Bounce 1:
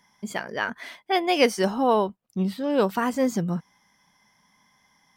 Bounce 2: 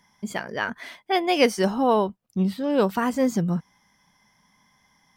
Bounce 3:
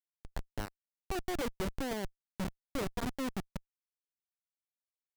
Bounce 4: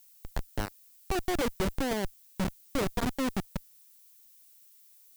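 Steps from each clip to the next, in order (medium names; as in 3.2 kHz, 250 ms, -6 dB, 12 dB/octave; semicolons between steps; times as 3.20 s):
bass shelf 150 Hz +6.5 dB
Schmitt trigger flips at -20 dBFS; upward expansion 1.5:1, over -35 dBFS; trim -7.5 dB
added noise violet -64 dBFS; trim +6 dB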